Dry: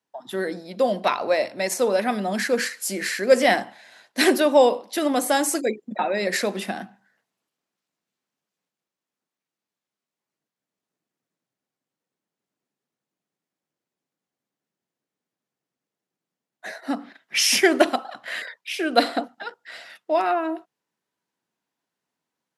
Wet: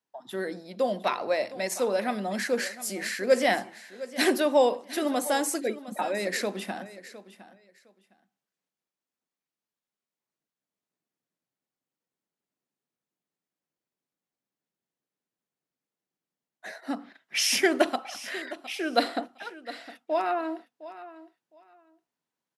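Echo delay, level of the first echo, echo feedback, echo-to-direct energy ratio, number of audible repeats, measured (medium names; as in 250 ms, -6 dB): 710 ms, -16.0 dB, 19%, -16.0 dB, 2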